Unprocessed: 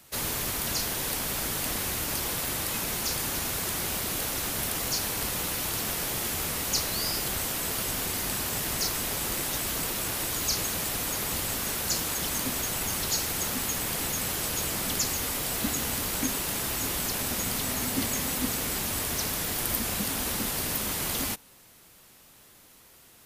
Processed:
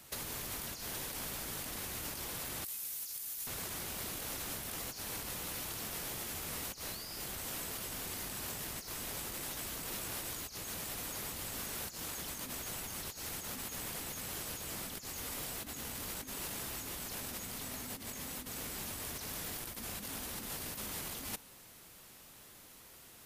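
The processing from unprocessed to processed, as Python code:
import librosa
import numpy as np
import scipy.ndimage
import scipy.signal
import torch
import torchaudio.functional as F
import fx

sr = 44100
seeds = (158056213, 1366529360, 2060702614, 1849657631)

y = fx.pre_emphasis(x, sr, coefficient=0.9, at=(2.64, 3.47))
y = fx.over_compress(y, sr, threshold_db=-34.0, ratio=-0.5)
y = F.gain(torch.from_numpy(y), -6.5).numpy()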